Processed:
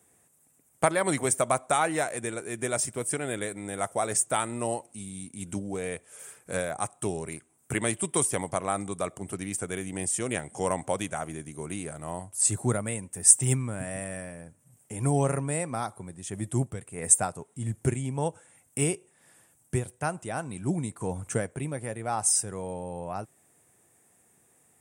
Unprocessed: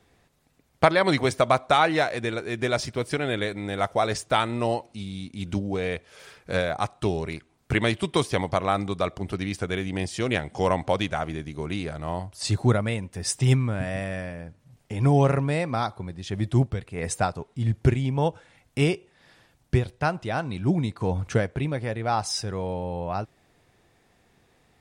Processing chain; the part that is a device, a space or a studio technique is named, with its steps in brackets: budget condenser microphone (HPF 110 Hz; resonant high shelf 6200 Hz +13 dB, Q 3); gain -5 dB

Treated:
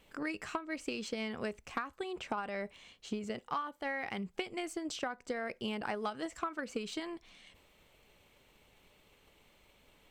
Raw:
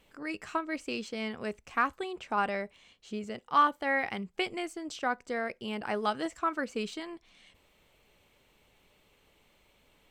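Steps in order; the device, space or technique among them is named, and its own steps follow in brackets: drum-bus smash (transient shaper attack +7 dB, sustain +3 dB; compressor 20:1, threshold -32 dBFS, peak gain reduction 19 dB; soft clip -22.5 dBFS, distortion -23 dB)

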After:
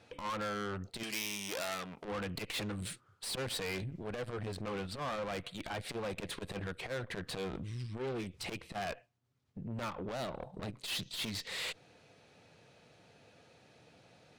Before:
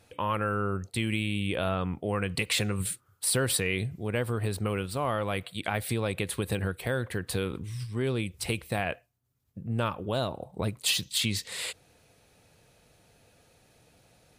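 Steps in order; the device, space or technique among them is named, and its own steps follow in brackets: valve radio (BPF 120–5000 Hz; tube stage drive 37 dB, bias 0.45; core saturation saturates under 170 Hz); 1.03–2.05 RIAA curve recording; gain +3 dB

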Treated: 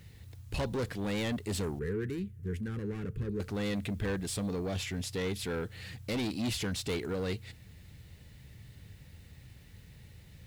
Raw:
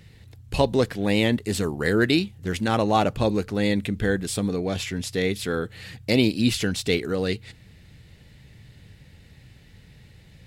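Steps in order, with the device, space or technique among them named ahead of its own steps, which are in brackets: open-reel tape (soft clip -24 dBFS, distortion -7 dB; bell 75 Hz +5 dB 1.17 oct; white noise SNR 33 dB); 1.79–3.4 EQ curve 190 Hz 0 dB, 300 Hz -7 dB, 440 Hz +3 dB, 630 Hz -30 dB, 1600 Hz -6 dB, 2500 Hz -12 dB, 3900 Hz -18 dB, 11000 Hz -11 dB; gain -5.5 dB

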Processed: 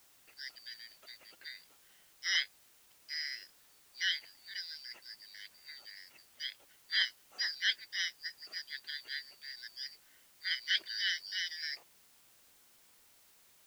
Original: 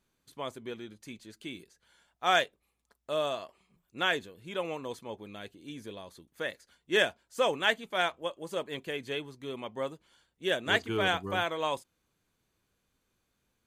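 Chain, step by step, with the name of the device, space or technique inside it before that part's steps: split-band scrambled radio (four-band scrambler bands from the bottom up 4321; BPF 390–2800 Hz; white noise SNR 23 dB)

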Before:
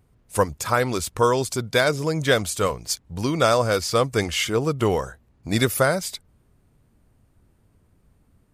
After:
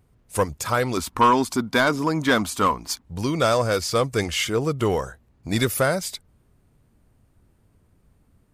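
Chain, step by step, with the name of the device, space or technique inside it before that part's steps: 0.97–3.02 ten-band EQ 125 Hz -8 dB, 250 Hz +12 dB, 500 Hz -7 dB, 1000 Hz +11 dB, 8000 Hz -4 dB; saturation between pre-emphasis and de-emphasis (high shelf 11000 Hz +6.5 dB; soft clip -10 dBFS, distortion -16 dB; high shelf 11000 Hz -6.5 dB)

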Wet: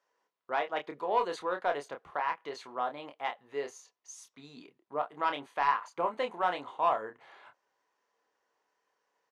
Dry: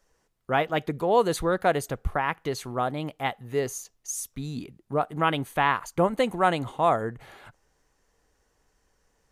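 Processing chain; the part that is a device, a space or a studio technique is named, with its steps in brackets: intercom (BPF 450–4300 Hz; bell 1000 Hz +7 dB 0.21 oct; soft clip -10 dBFS, distortion -20 dB; doubler 28 ms -6.5 dB); gain -7 dB

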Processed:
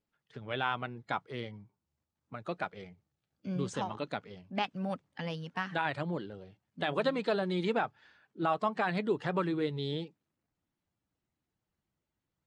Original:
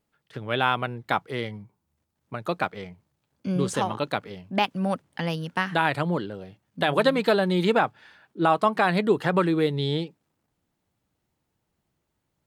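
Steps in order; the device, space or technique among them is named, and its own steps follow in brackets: clip after many re-uploads (LPF 7700 Hz 24 dB/oct; bin magnitudes rounded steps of 15 dB); 2.76–3.47 notch 1000 Hz, Q 5.3; gain -9 dB

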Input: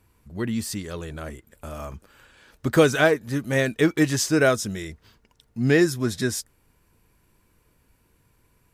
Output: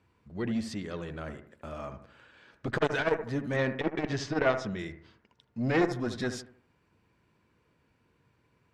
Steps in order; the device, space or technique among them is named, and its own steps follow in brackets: valve radio (BPF 96–4000 Hz; tube stage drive 11 dB, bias 0.65; core saturation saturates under 820 Hz); 3.56–4.79 LPF 5100 Hz 12 dB/oct; analogue delay 76 ms, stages 1024, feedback 38%, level -10 dB

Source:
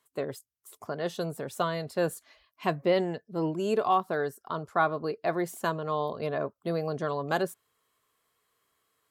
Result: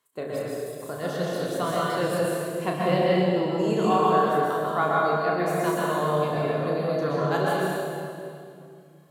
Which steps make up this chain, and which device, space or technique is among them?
tunnel (flutter echo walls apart 5.7 m, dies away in 0.33 s; reverb RT60 2.4 s, pre-delay 0.114 s, DRR -5 dB); gain -1.5 dB

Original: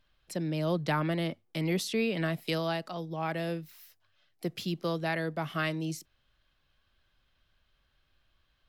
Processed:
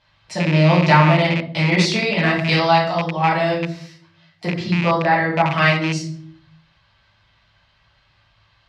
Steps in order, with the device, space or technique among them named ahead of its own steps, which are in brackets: notch 420 Hz, Q 12; 4.46–5.52 band shelf 5500 Hz -9.5 dB 2.6 oct; shoebox room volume 77 m³, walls mixed, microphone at 1.5 m; car door speaker with a rattle (rattling part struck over -28 dBFS, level -23 dBFS; speaker cabinet 85–6900 Hz, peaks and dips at 110 Hz +9 dB, 250 Hz -7 dB, 420 Hz -5 dB, 920 Hz +10 dB, 2000 Hz +5 dB, 4400 Hz +4 dB); gain +7 dB

